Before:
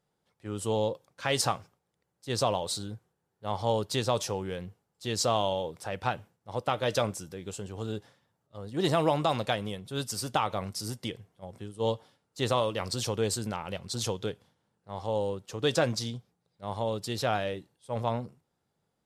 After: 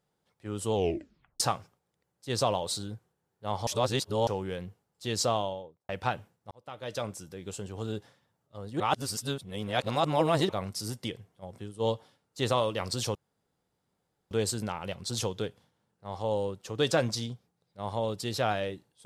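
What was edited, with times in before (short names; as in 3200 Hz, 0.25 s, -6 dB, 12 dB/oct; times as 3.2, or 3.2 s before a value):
0.73 tape stop 0.67 s
3.67–4.27 reverse
5.18–5.89 studio fade out
6.51–7.56 fade in
8.8–10.49 reverse
13.15 insert room tone 1.16 s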